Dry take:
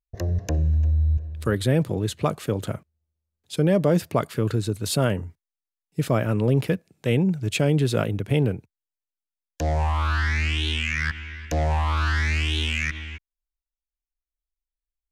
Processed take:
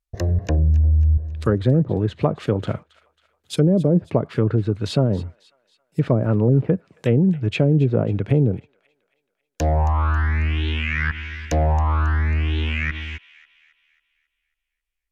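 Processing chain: treble ducked by the level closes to 420 Hz, closed at -16 dBFS; on a send: thin delay 0.272 s, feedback 46%, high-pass 1600 Hz, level -17 dB; on the sum: gain +4.5 dB

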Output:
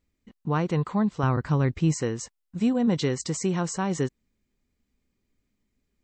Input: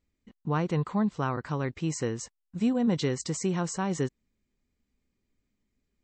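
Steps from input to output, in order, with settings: 1.23–1.94 low shelf 180 Hz +11.5 dB; gain +2.5 dB

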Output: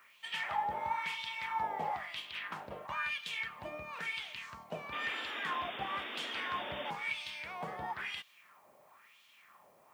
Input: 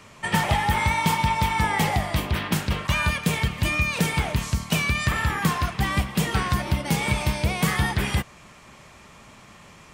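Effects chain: wah 1 Hz 600–3400 Hz, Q 2.7; added noise blue -69 dBFS; painted sound noise, 4.92–6.91, 210–3700 Hz -38 dBFS; gain -5.5 dB

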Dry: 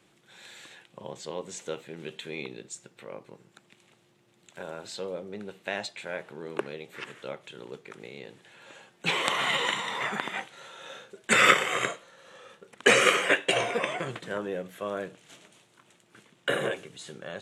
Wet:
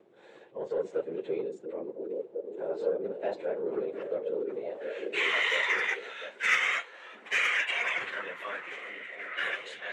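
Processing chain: local time reversal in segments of 42 ms; in parallel at +2.5 dB: negative-ratio compressor -31 dBFS, ratio -0.5; on the sum: band-pass sweep 470 Hz -> 2100 Hz, 8.03–8.65; soft clip -18 dBFS, distortion -17 dB; plain phase-vocoder stretch 0.57×; on a send: delay with a stepping band-pass 0.699 s, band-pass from 280 Hz, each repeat 0.7 oct, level -2 dB; on the sum: gain +4 dB

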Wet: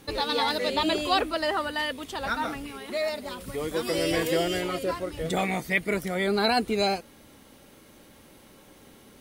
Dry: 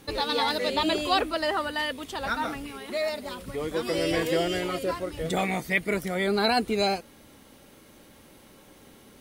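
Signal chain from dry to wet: 3.4–4.61 high shelf 5600 Hz -> 9700 Hz +7 dB

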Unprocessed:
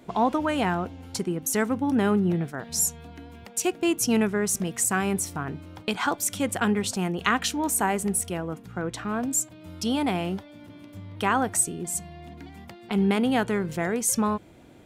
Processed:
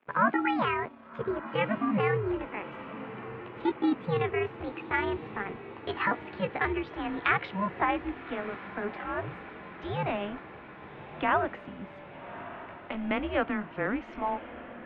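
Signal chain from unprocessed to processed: gliding pitch shift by +9.5 st ending unshifted; crossover distortion -49.5 dBFS; on a send: diffused feedback echo 1.18 s, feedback 67%, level -14 dB; on the sum: mistuned SSB -200 Hz 420–3000 Hz

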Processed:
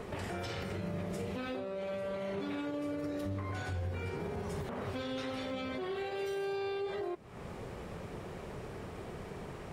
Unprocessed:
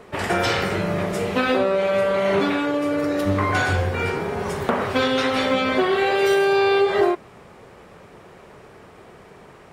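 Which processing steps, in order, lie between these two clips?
low shelf 170 Hz +8.5 dB; compressor 4:1, threshold -35 dBFS, peak gain reduction 18.5 dB; limiter -29 dBFS, peak gain reduction 9 dB; dynamic EQ 1400 Hz, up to -4 dB, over -50 dBFS, Q 0.79

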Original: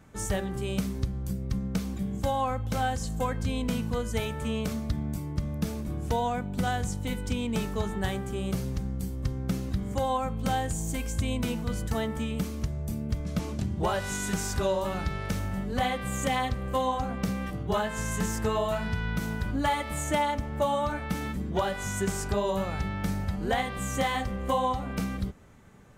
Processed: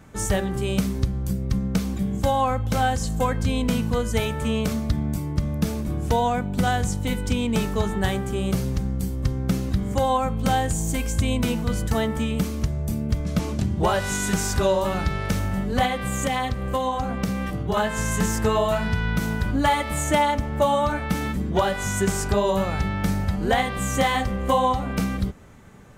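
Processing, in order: 15.85–17.77 compressor 3:1, threshold -28 dBFS, peak gain reduction 5 dB; gain +6.5 dB

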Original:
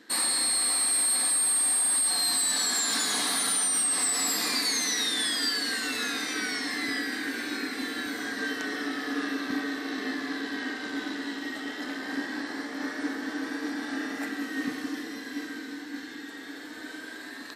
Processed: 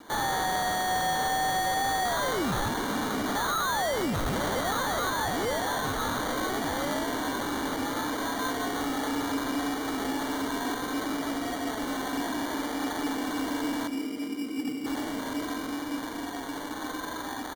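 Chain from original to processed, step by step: 2.68–3.35 tilt -4 dB/oct; in parallel at -1 dB: limiter -31 dBFS, peak gain reduction 12.5 dB; 13.87–14.86 on the sum: running mean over 45 samples; sample-and-hold 17×; vibrato 0.65 Hz 13 cents; hard clip -26 dBFS, distortion -10 dB; on a send: echo 0.173 s -14.5 dB

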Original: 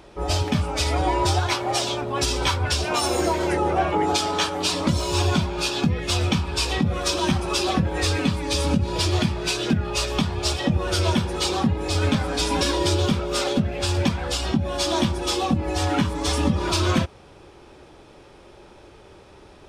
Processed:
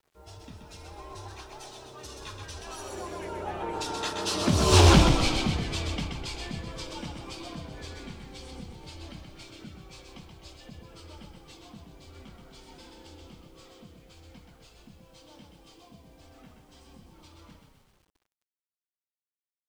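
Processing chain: Doppler pass-by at 4.82, 28 m/s, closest 4.2 m; frequency-shifting echo 0.128 s, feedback 57%, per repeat -32 Hz, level -5 dB; bit-crush 12-bit; Doppler distortion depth 0.39 ms; gain +5 dB

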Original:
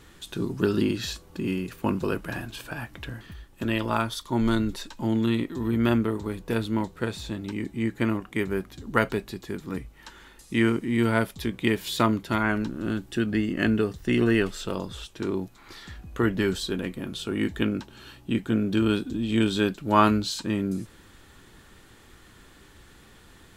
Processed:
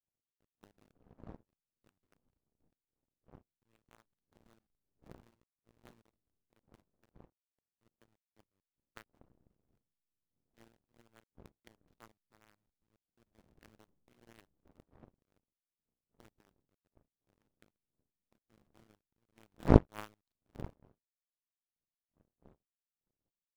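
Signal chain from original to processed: level-crossing sampler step -19 dBFS; wind noise 260 Hz -26 dBFS; power-law curve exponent 3; gain -4.5 dB

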